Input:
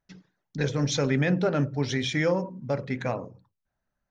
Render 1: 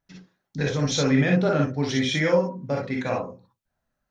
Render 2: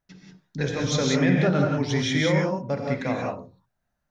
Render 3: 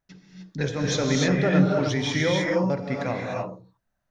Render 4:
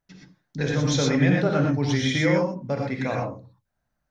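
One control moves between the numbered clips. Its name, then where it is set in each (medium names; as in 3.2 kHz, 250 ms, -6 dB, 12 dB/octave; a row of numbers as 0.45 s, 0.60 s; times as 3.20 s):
gated-style reverb, gate: 80 ms, 210 ms, 330 ms, 140 ms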